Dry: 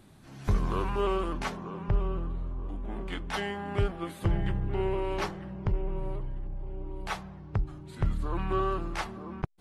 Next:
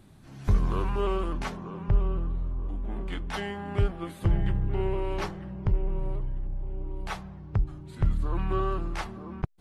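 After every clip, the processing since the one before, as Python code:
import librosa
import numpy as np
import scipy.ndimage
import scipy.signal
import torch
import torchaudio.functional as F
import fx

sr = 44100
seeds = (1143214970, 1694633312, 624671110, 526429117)

y = fx.low_shelf(x, sr, hz=180.0, db=6.0)
y = y * librosa.db_to_amplitude(-1.5)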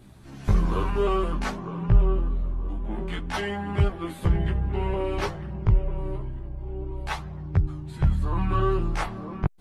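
y = fx.chorus_voices(x, sr, voices=2, hz=0.27, base_ms=16, depth_ms=3.4, mix_pct=50)
y = y * librosa.db_to_amplitude(7.5)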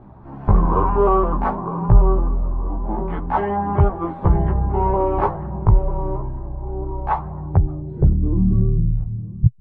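y = fx.filter_sweep_lowpass(x, sr, from_hz=940.0, to_hz=120.0, start_s=7.47, end_s=8.94, q=2.8)
y = y * librosa.db_to_amplitude(6.0)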